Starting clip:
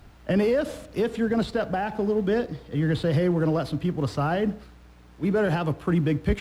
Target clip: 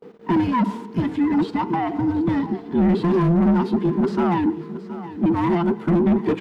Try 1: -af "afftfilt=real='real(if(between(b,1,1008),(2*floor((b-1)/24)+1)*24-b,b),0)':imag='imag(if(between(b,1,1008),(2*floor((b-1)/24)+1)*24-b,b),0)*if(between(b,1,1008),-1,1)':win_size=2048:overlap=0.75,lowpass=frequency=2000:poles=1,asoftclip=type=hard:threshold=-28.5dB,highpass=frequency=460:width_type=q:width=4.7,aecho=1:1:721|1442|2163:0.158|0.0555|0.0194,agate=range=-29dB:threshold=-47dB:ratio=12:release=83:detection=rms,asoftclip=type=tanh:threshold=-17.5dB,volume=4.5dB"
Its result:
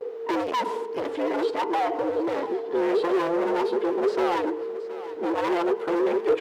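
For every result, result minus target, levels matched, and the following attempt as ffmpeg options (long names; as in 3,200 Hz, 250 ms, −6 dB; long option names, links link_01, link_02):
hard clipping: distortion +12 dB; 500 Hz band +7.0 dB
-af "afftfilt=real='real(if(between(b,1,1008),(2*floor((b-1)/24)+1)*24-b,b),0)':imag='imag(if(between(b,1,1008),(2*floor((b-1)/24)+1)*24-b,b),0)*if(between(b,1,1008),-1,1)':win_size=2048:overlap=0.75,lowpass=frequency=2000:poles=1,asoftclip=type=hard:threshold=-18.5dB,highpass=frequency=460:width_type=q:width=4.7,aecho=1:1:721|1442|2163:0.158|0.0555|0.0194,agate=range=-29dB:threshold=-47dB:ratio=12:release=83:detection=rms,asoftclip=type=tanh:threshold=-17.5dB,volume=4.5dB"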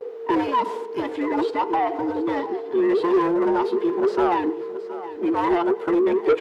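500 Hz band +6.0 dB
-af "afftfilt=real='real(if(between(b,1,1008),(2*floor((b-1)/24)+1)*24-b,b),0)':imag='imag(if(between(b,1,1008),(2*floor((b-1)/24)+1)*24-b,b),0)*if(between(b,1,1008),-1,1)':win_size=2048:overlap=0.75,lowpass=frequency=2000:poles=1,asoftclip=type=hard:threshold=-18.5dB,highpass=frequency=190:width_type=q:width=4.7,aecho=1:1:721|1442|2163:0.158|0.0555|0.0194,agate=range=-29dB:threshold=-47dB:ratio=12:release=83:detection=rms,asoftclip=type=tanh:threshold=-17.5dB,volume=4.5dB"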